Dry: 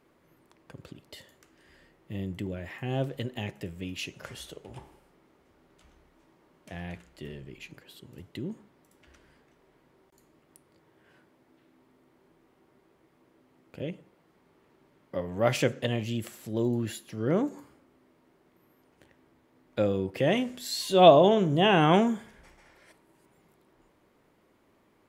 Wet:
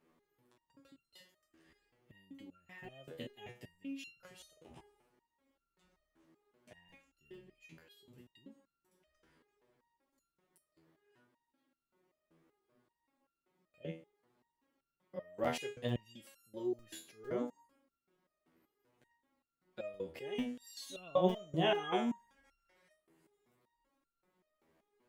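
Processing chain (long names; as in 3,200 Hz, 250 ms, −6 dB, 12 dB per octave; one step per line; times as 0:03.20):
parametric band 94 Hz −12.5 dB 0.26 octaves
regular buffer underruns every 0.45 s, samples 256, zero, from 0:00.59
step-sequenced resonator 5.2 Hz 81–1,400 Hz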